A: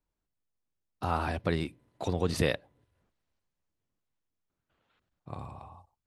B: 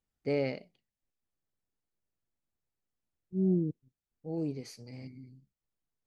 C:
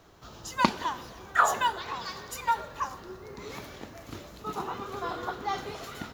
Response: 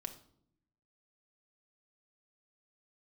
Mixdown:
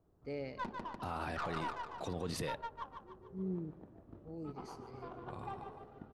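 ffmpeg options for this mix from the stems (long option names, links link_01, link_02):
-filter_complex "[0:a]asoftclip=type=tanh:threshold=-14.5dB,equalizer=frequency=72:width_type=o:width=0.77:gain=-7,volume=-5.5dB[link_01];[1:a]volume=-11.5dB,asplit=2[link_02][link_03];[link_03]volume=-18.5dB[link_04];[2:a]bandreject=frequency=2200:width=7.2,aeval=exprs='(tanh(2.51*val(0)+0.8)-tanh(0.8))/2.51':channel_layout=same,adynamicsmooth=sensitivity=1.5:basefreq=570,volume=-6.5dB,asplit=2[link_05][link_06];[link_06]volume=-6dB[link_07];[link_04][link_07]amix=inputs=2:normalize=0,aecho=0:1:148|296|444|592|740|888|1036:1|0.47|0.221|0.104|0.0488|0.0229|0.0108[link_08];[link_01][link_02][link_05][link_08]amix=inputs=4:normalize=0,alimiter=level_in=6dB:limit=-24dB:level=0:latency=1:release=11,volume=-6dB"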